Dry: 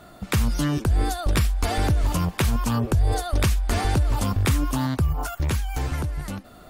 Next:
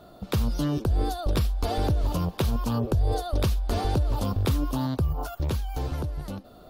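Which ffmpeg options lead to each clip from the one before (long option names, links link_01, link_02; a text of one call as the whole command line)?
ffmpeg -i in.wav -af "equalizer=frequency=500:width_type=o:width=1:gain=5,equalizer=frequency=2000:width_type=o:width=1:gain=-10,equalizer=frequency=4000:width_type=o:width=1:gain=4,equalizer=frequency=8000:width_type=o:width=1:gain=-9,volume=-3.5dB" out.wav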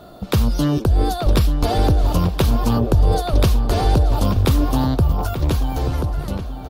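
ffmpeg -i in.wav -filter_complex "[0:a]asplit=2[link_01][link_02];[link_02]adelay=882,lowpass=frequency=3200:poles=1,volume=-9.5dB,asplit=2[link_03][link_04];[link_04]adelay=882,lowpass=frequency=3200:poles=1,volume=0.38,asplit=2[link_05][link_06];[link_06]adelay=882,lowpass=frequency=3200:poles=1,volume=0.38,asplit=2[link_07][link_08];[link_08]adelay=882,lowpass=frequency=3200:poles=1,volume=0.38[link_09];[link_01][link_03][link_05][link_07][link_09]amix=inputs=5:normalize=0,volume=8dB" out.wav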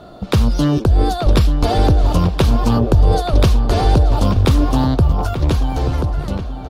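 ffmpeg -i in.wav -af "adynamicsmooth=sensitivity=7:basefreq=7800,volume=3dB" out.wav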